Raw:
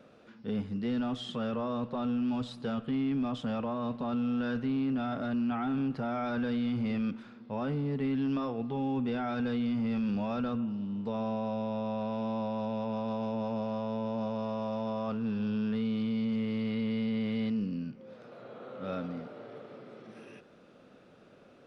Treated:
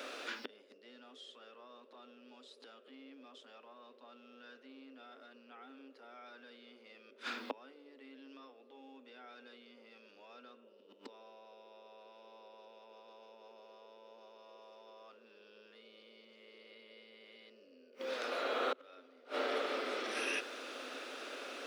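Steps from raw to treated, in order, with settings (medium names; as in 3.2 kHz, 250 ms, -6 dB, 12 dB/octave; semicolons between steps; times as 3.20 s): tilt shelf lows -8.5 dB; inverted gate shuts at -37 dBFS, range -33 dB; Chebyshev high-pass 260 Hz, order 5; band noise 370–580 Hz -79 dBFS; trim +14.5 dB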